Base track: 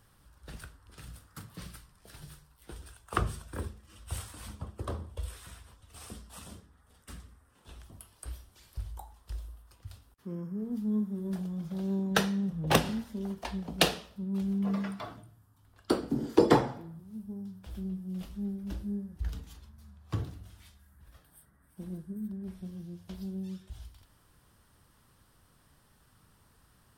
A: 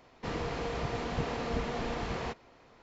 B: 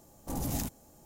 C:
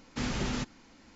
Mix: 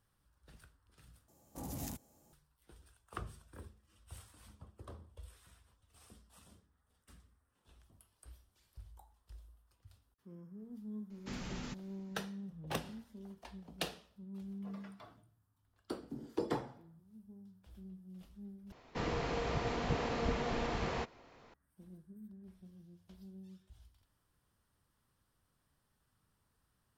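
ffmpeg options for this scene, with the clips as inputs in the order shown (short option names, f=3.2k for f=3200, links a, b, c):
-filter_complex "[0:a]volume=-14.5dB[a];[2:a]highpass=47[b];[a]asplit=3[c][d][e];[c]atrim=end=1.284[f];[b]atrim=end=1.05,asetpts=PTS-STARTPTS,volume=-9dB[g];[d]atrim=start=2.326:end=18.724[h];[1:a]atrim=end=2.82,asetpts=PTS-STARTPTS,volume=-1.5dB[i];[e]atrim=start=21.536[j];[3:a]atrim=end=1.15,asetpts=PTS-STARTPTS,volume=-11.5dB,afade=t=in:d=0.004:c=hsin,afade=t=out:st=1.146:d=0.004:c=hsin,adelay=11100[k];[f][g]acrossfade=d=0.004:c1=hsin:c2=hsin[l];[l][h]acrossfade=d=0.004:c1=hsin:c2=hsin[m];[m][i]acrossfade=d=0.004:c1=hsin:c2=hsin[n];[n][j]acrossfade=d=0.004:c1=hsin:c2=hsin[o];[o][k]amix=inputs=2:normalize=0"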